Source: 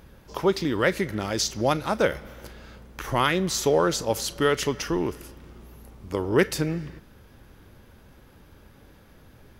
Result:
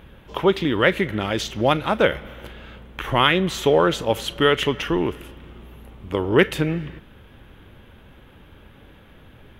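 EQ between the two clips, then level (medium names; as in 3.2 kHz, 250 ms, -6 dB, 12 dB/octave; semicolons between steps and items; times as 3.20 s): resonant high shelf 4 kHz -7.5 dB, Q 3; +4.0 dB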